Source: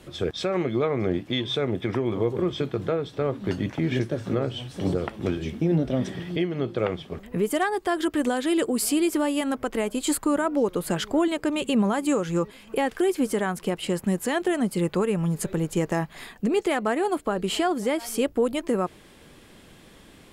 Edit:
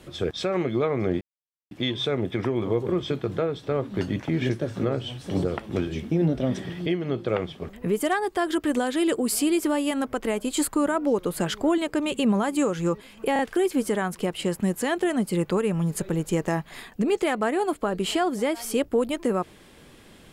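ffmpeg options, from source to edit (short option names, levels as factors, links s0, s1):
-filter_complex "[0:a]asplit=4[s0][s1][s2][s3];[s0]atrim=end=1.21,asetpts=PTS-STARTPTS,afade=t=out:st=1.206:d=0.004:c=hsin,apad=pad_dur=0.5[s4];[s1]atrim=start=1.21:end=12.862,asetpts=PTS-STARTPTS,afade=t=in:d=0.004:c=hsin[s5];[s2]atrim=start=12.828:end=12.862[s6];[s3]atrim=start=12.828[s7];[s4][s5]concat=n=2:v=0:a=1[s8];[s8][s6]acrossfade=d=0.004:c1=hsin:c2=hsin[s9];[s9][s7]acrossfade=d=0.004:c1=hsin:c2=hsin"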